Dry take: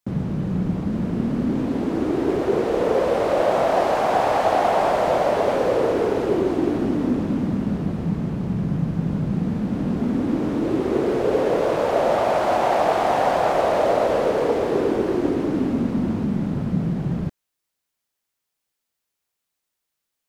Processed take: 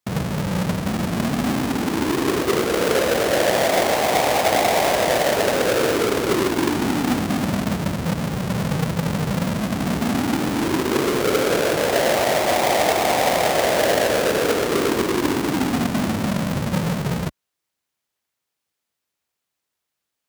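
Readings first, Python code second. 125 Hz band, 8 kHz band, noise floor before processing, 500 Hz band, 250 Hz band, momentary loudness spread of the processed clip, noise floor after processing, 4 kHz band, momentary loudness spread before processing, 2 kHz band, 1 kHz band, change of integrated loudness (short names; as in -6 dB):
+1.0 dB, n/a, -81 dBFS, 0.0 dB, 0.0 dB, 6 LU, -81 dBFS, +12.0 dB, 5 LU, +8.0 dB, 0.0 dB, +1.0 dB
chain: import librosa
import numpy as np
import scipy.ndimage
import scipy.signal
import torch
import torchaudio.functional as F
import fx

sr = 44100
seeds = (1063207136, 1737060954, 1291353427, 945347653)

y = fx.halfwave_hold(x, sr)
y = scipy.signal.sosfilt(scipy.signal.butter(2, 50.0, 'highpass', fs=sr, output='sos'), y)
y = F.gain(torch.from_numpy(y), -3.0).numpy()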